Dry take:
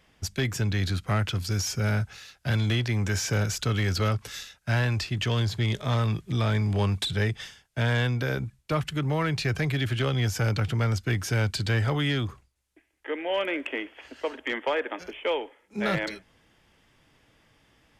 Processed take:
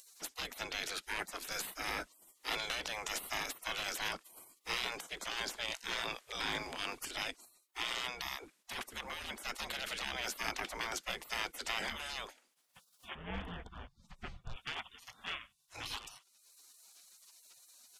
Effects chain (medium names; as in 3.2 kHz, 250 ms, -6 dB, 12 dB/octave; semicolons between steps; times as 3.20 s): spectral gate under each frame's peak -25 dB weak; 13.15–14.56 s: tilt EQ -4.5 dB/octave; upward compressor, threshold -48 dBFS; trim +2 dB